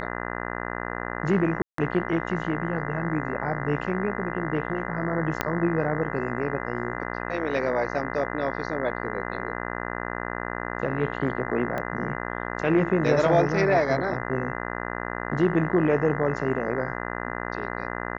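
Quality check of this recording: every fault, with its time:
mains buzz 60 Hz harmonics 34 −32 dBFS
0:01.62–0:01.78: drop-out 163 ms
0:05.41: click −8 dBFS
0:11.78: click −17 dBFS

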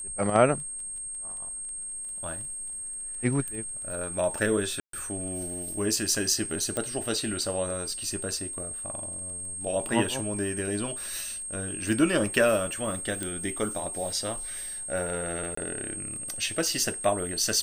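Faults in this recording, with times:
surface crackle 14 per second −38 dBFS
whistle 8,500 Hz −34 dBFS
0:04.80–0:04.93: drop-out 133 ms
0:06.77: click −15 dBFS
0:13.23: click −17 dBFS
0:15.55–0:15.57: drop-out 24 ms

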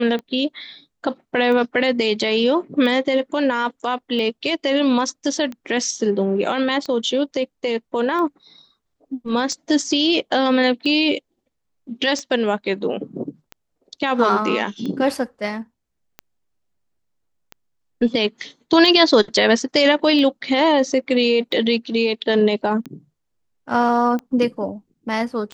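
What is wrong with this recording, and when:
scratch tick 45 rpm −18 dBFS

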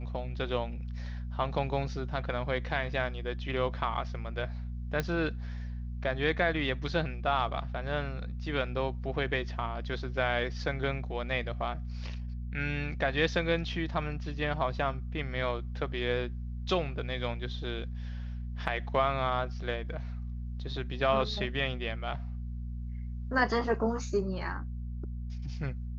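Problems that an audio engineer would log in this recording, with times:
mains hum 60 Hz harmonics 4 −37 dBFS
0:05.00: click −16 dBFS

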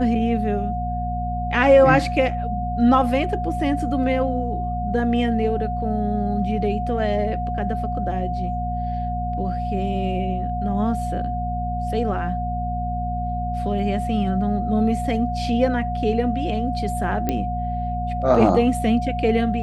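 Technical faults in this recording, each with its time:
mains hum 60 Hz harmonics 4 −27 dBFS
whistle 720 Hz −26 dBFS
0:17.29: click −9 dBFS

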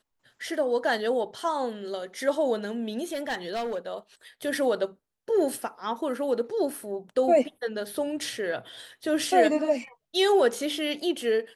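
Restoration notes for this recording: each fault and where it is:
0:03.12–0:03.78: clipping −26 dBFS

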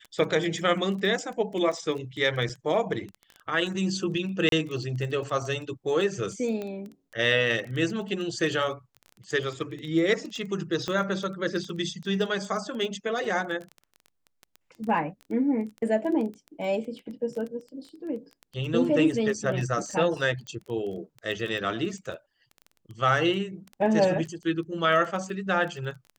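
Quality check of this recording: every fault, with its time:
surface crackle 14 per second −33 dBFS
0:02.49–0:02.50: drop-out 6.4 ms
0:04.49–0:04.52: drop-out 32 ms
0:06.62: click −22 dBFS
0:10.88: click −16 dBFS
0:20.47: click −25 dBFS

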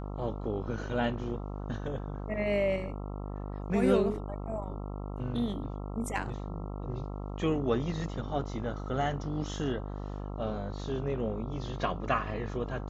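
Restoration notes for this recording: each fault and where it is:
mains buzz 50 Hz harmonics 27 −38 dBFS

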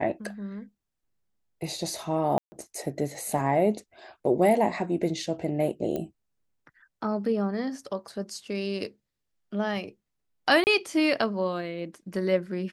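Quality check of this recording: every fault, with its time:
0:02.38–0:02.52: drop-out 140 ms
0:05.96: click −19 dBFS
0:10.64–0:10.67: drop-out 29 ms

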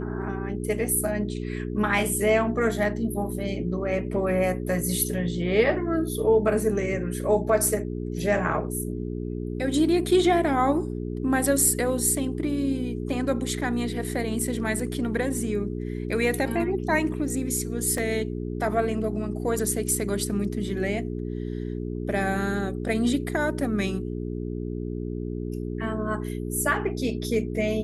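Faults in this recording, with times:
mains hum 60 Hz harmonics 7 −31 dBFS
0:17.98: drop-out 2.5 ms

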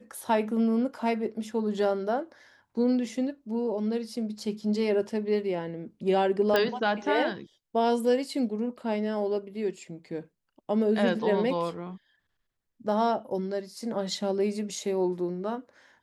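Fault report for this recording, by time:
0:06.56: click −11 dBFS

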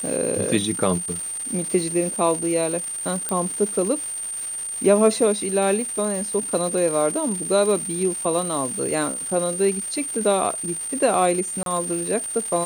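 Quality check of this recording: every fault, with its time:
surface crackle 490 per second −29 dBFS
whistle 8,800 Hz −27 dBFS
0:03.29: click −10 dBFS
0:11.63–0:11.66: drop-out 32 ms

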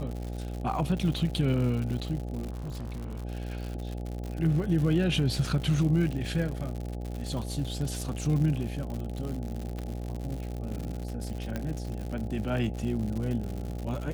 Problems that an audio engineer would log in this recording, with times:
mains buzz 60 Hz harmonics 14 −35 dBFS
surface crackle 130 per second −34 dBFS
0:02.51–0:03.24: clipping −33 dBFS
0:08.01: drop-out 2.9 ms
0:09.79: click −24 dBFS
0:11.56: click −19 dBFS

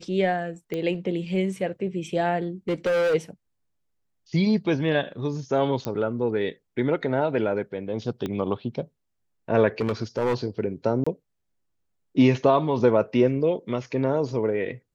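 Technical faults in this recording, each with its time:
0:00.74: click −18 dBFS
0:02.69–0:03.15: clipping −20 dBFS
0:05.85: click −14 dBFS
0:08.26: click −17 dBFS
0:09.80–0:10.35: clipping −19.5 dBFS
0:11.04–0:11.06: drop-out 25 ms

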